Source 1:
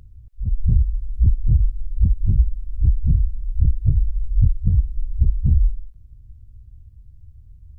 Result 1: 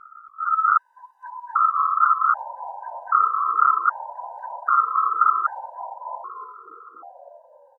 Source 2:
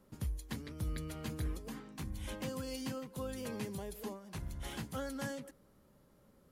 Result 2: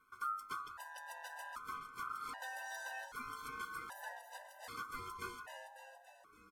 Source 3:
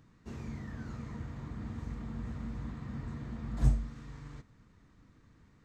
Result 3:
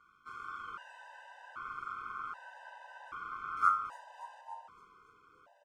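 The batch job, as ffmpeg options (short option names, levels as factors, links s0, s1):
-filter_complex "[0:a]aeval=exprs='val(0)*sin(2*PI*1300*n/s)':c=same,asplit=9[s0][s1][s2][s3][s4][s5][s6][s7][s8];[s1]adelay=284,afreqshift=-110,volume=0.398[s9];[s2]adelay=568,afreqshift=-220,volume=0.243[s10];[s3]adelay=852,afreqshift=-330,volume=0.148[s11];[s4]adelay=1136,afreqshift=-440,volume=0.0902[s12];[s5]adelay=1420,afreqshift=-550,volume=0.055[s13];[s6]adelay=1704,afreqshift=-660,volume=0.0335[s14];[s7]adelay=1988,afreqshift=-770,volume=0.0204[s15];[s8]adelay=2272,afreqshift=-880,volume=0.0124[s16];[s0][s9][s10][s11][s12][s13][s14][s15][s16]amix=inputs=9:normalize=0,afftfilt=real='re*gt(sin(2*PI*0.64*pts/sr)*(1-2*mod(floor(b*sr/1024/510),2)),0)':imag='im*gt(sin(2*PI*0.64*pts/sr)*(1-2*mod(floor(b*sr/1024/510),2)),0)':win_size=1024:overlap=0.75"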